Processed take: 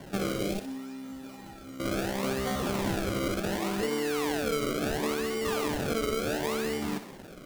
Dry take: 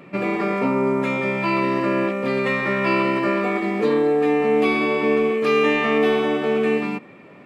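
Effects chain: decimation with a swept rate 34×, swing 100% 0.7 Hz; compression 6:1, threshold -26 dBFS, peak gain reduction 12 dB; 0.59–1.80 s: feedback comb 270 Hz, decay 0.3 s, harmonics odd, mix 90%; thinning echo 62 ms, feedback 49%, level -9.5 dB; 0.31–0.64 s: spectral replace 1–2.1 kHz both; trim -1.5 dB

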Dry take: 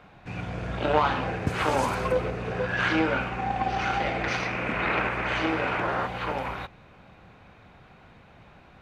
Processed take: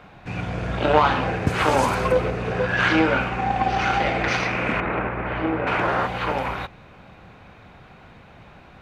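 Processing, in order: 4.80–5.67 s: tape spacing loss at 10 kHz 44 dB; trim +5.5 dB

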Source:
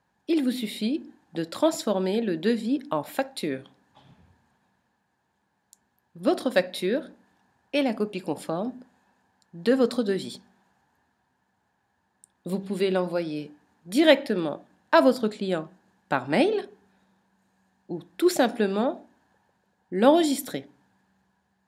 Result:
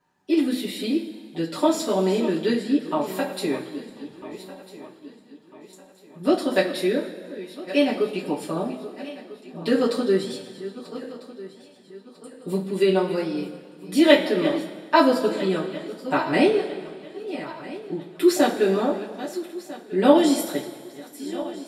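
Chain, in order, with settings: backward echo that repeats 649 ms, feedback 60%, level -13.5 dB; two-slope reverb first 0.2 s, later 1.7 s, from -18 dB, DRR -8 dB; trim -5.5 dB

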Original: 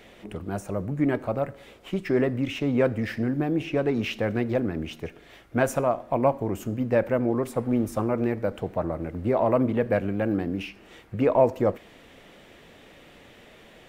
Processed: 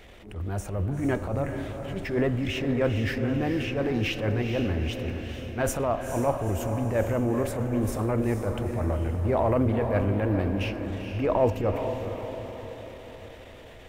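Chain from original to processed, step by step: resonant low shelf 110 Hz +10 dB, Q 1.5; transient shaper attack -11 dB, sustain +3 dB; echo that smears into a reverb 454 ms, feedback 53%, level -7 dB

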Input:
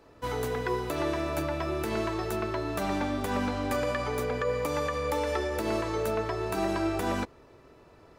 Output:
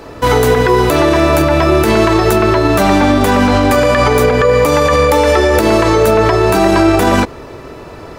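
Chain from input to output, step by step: loudness maximiser +25 dB; trim -1 dB

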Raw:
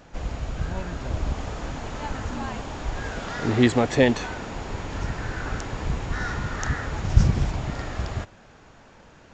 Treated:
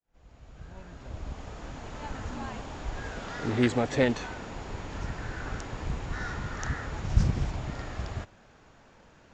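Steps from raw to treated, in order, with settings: fade-in on the opening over 2.29 s; pre-echo 61 ms -17 dB; loudspeaker Doppler distortion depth 0.49 ms; trim -6 dB

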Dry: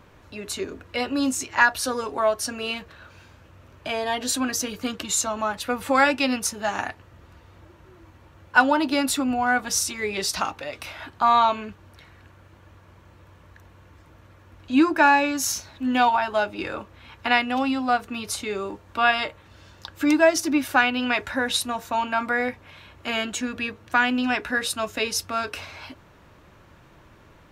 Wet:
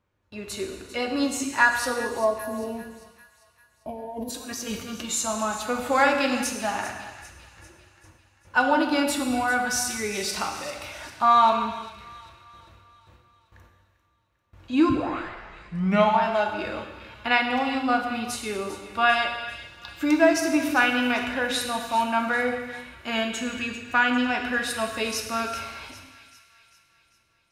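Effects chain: 1.96–4.30 s: time-frequency box 1.1–9.8 kHz -26 dB; gate with hold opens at -40 dBFS; harmonic-percussive split percussive -4 dB; 3.88–4.92 s: compressor with a negative ratio -35 dBFS, ratio -1; 14.89 s: tape start 1.30 s; feedback echo behind a high-pass 396 ms, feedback 51%, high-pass 1.8 kHz, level -13.5 dB; gated-style reverb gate 460 ms falling, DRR 3 dB; trim -1.5 dB

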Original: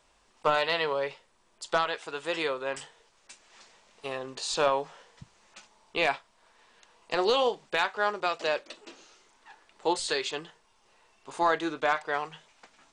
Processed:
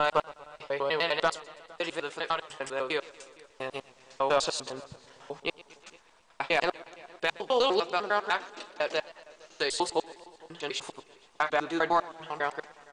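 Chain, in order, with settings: slices played last to first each 100 ms, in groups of 6; echo from a far wall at 79 m, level -23 dB; modulated delay 120 ms, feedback 61%, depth 113 cents, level -20 dB

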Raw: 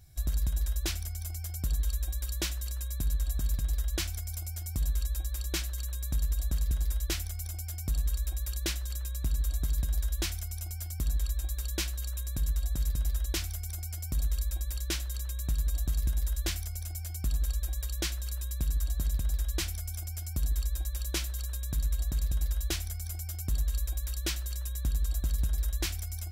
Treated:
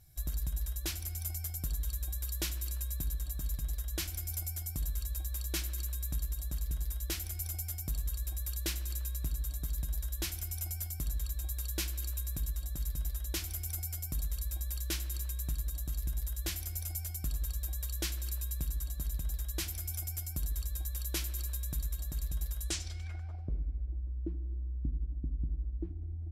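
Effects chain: gain riding 0.5 s; low-pass sweep 13 kHz -> 280 Hz, 22.60–23.65 s; simulated room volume 4000 m³, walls mixed, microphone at 0.53 m; trim -5 dB

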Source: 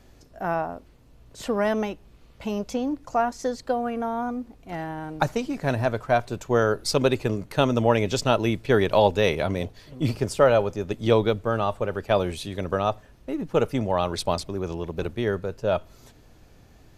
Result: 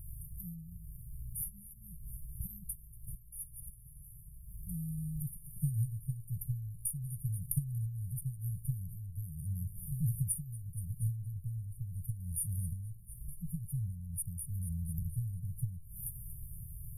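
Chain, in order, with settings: tone controls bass -3 dB, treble +11 dB; thinning echo 235 ms, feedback 64%, level -14 dB; compression 16:1, threshold -34 dBFS, peak gain reduction 22 dB; brick-wall FIR band-stop 170–9100 Hz; tape noise reduction on one side only decoder only; trim +11.5 dB

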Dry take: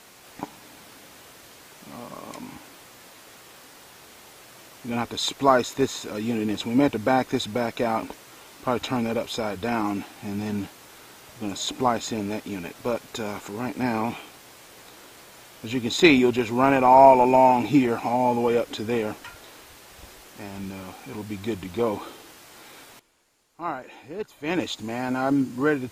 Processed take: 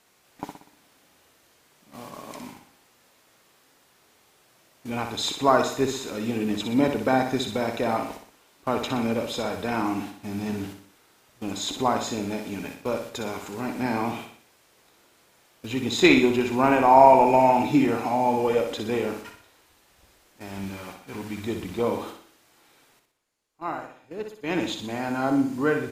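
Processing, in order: gate -39 dBFS, range -12 dB; 20.49–21.41 s: peaking EQ 1.8 kHz +4 dB 1.4 oct; feedback delay 61 ms, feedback 46%, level -6.5 dB; trim -1.5 dB

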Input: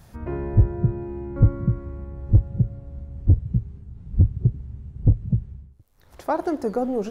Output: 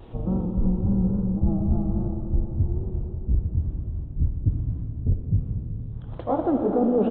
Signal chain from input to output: pitch bend over the whole clip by -12 st ending unshifted; graphic EQ 125/250/500/1000/2000 Hz +5/+7/+5/+4/-6 dB; reverse; compression, threshold -25 dBFS, peak gain reduction 16 dB; reverse; resampled via 8 kHz; vibrato 3.6 Hz 83 cents; algorithmic reverb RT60 4.5 s, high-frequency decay 0.75×, pre-delay 20 ms, DRR 3 dB; trim +5 dB

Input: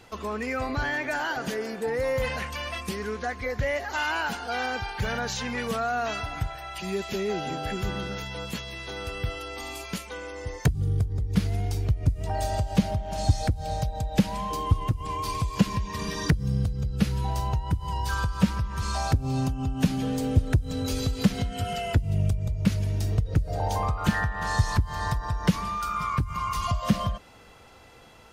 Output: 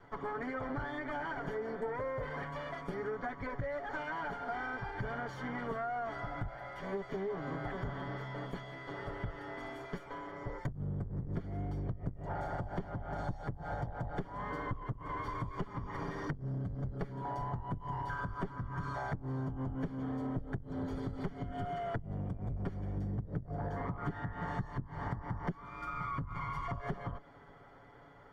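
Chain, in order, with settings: comb filter that takes the minimum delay 7.1 ms; 22.97–25.53 s: peaking EQ 190 Hz +6.5 dB 2.2 oct; compression 12:1, threshold -32 dBFS, peak gain reduction 21 dB; Savitzky-Golay filter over 41 samples; trim -1.5 dB

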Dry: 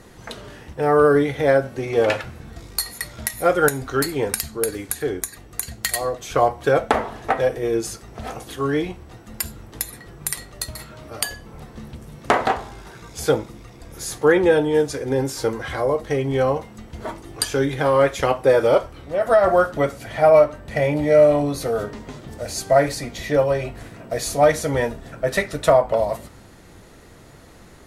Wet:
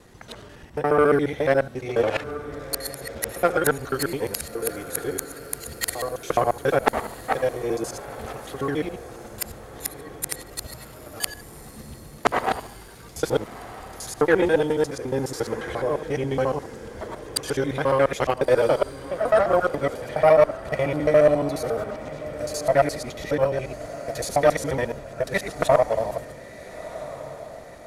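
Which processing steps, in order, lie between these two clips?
time reversed locally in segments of 70 ms; Chebyshev shaper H 3 -18 dB, 4 -34 dB, 7 -44 dB, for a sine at -2 dBFS; echo that smears into a reverb 1366 ms, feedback 48%, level -14.5 dB

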